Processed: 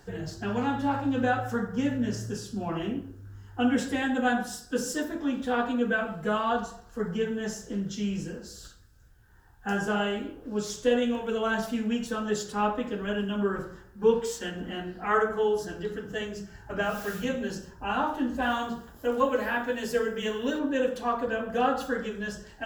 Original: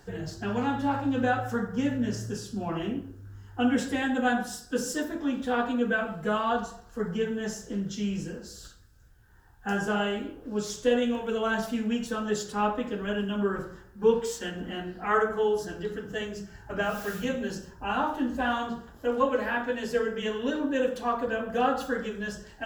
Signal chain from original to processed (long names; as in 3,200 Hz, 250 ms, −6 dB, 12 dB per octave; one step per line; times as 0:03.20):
0:18.42–0:20.59: high-shelf EQ 8,800 Hz +11.5 dB